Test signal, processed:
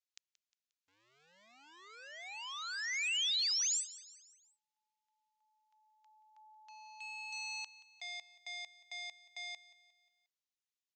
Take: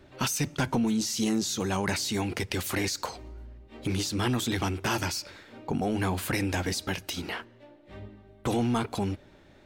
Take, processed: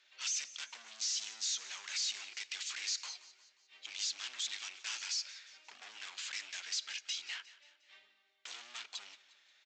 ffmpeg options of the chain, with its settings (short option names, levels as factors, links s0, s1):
-af "aresample=16000,asoftclip=type=hard:threshold=0.0251,aresample=44100,asuperpass=centerf=5500:order=4:qfactor=0.62,aecho=1:1:178|356|534|712:0.126|0.0617|0.0302|0.0148"